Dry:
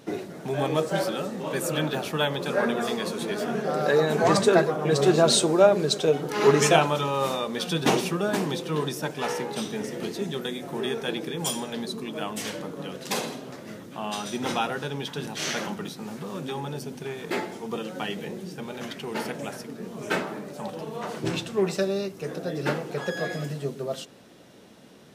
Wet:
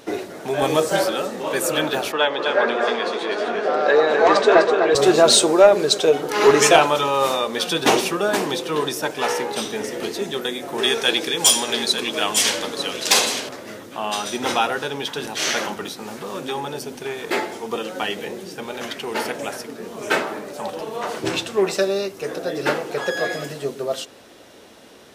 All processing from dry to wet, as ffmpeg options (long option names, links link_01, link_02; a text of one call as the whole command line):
ffmpeg -i in.wav -filter_complex "[0:a]asettb=1/sr,asplit=3[link_01][link_02][link_03];[link_01]atrim=end=0.624[link_04];[link_02]atrim=start=0.62:end=1.06,asetpts=PTS-STARTPTS,afade=type=in:duration=0.004:curve=qsin,afade=type=out:start_time=0.436:duration=0.004:curve=qsin,acrossover=split=3200[link_05][link_06];[link_06]acompressor=threshold=-47dB:ratio=4:attack=1:release=60[link_07];[link_05][link_07]amix=inputs=2:normalize=0,bass=frequency=250:gain=5,treble=frequency=4000:gain=12[link_08];[link_03]atrim=start=1.056[link_09];[link_04][link_08]acrossfade=duration=0.004:curve1=hsin:curve2=qsin[link_10];[link_10][link_09]acrossfade=duration=0.004:curve1=qsin:curve2=hsin,asettb=1/sr,asplit=3[link_11][link_12][link_13];[link_11]atrim=end=2.124[link_14];[link_12]atrim=start=2.12:end=4.95,asetpts=PTS-STARTPTS,afade=type=in:duration=0.004:curve=qsin,afade=type=out:start_time=2.826:duration=0.004:curve=qsin,highpass=290,lowpass=3700,aecho=1:1:251:0.473,atrim=end_sample=124803[link_15];[link_13]atrim=start=4.946[link_16];[link_14][link_15]acrossfade=duration=0.004:curve1=hsin:curve2=qsin[link_17];[link_17][link_16]acrossfade=duration=0.004:curve1=qsin:curve2=hsin,asettb=1/sr,asplit=3[link_18][link_19][link_20];[link_18]atrim=end=10.784[link_21];[link_19]atrim=start=10.78:end=13.49,asetpts=PTS-STARTPTS,afade=type=in:duration=0.004:curve=qsin,afade=type=out:start_time=2.706:duration=0.004:curve=qsin,equalizer=frequency=5400:width_type=o:width=3:gain=9.5,aecho=1:1:900:0.355,atrim=end_sample=119511[link_22];[link_20]atrim=start=13.486[link_23];[link_21][link_22]acrossfade=duration=0.004:curve1=hsin:curve2=qsin[link_24];[link_24][link_23]acrossfade=duration=0.004:curve1=qsin:curve2=hsin,equalizer=frequency=160:width=1.2:gain=-13.5,acontrast=62,volume=1.5dB" out.wav